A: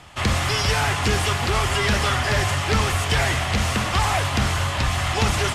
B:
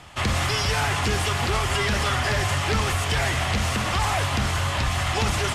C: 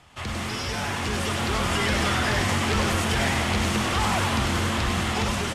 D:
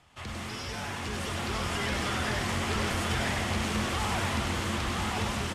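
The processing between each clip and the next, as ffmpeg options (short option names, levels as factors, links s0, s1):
-af "alimiter=limit=0.188:level=0:latency=1:release=71"
-filter_complex "[0:a]asplit=7[s0][s1][s2][s3][s4][s5][s6];[s1]adelay=99,afreqshift=130,volume=0.631[s7];[s2]adelay=198,afreqshift=260,volume=0.295[s8];[s3]adelay=297,afreqshift=390,volume=0.14[s9];[s4]adelay=396,afreqshift=520,volume=0.0653[s10];[s5]adelay=495,afreqshift=650,volume=0.0309[s11];[s6]adelay=594,afreqshift=780,volume=0.0145[s12];[s0][s7][s8][s9][s10][s11][s12]amix=inputs=7:normalize=0,dynaudnorm=f=290:g=9:m=2.51,volume=0.376"
-af "aecho=1:1:990:0.596,volume=0.422"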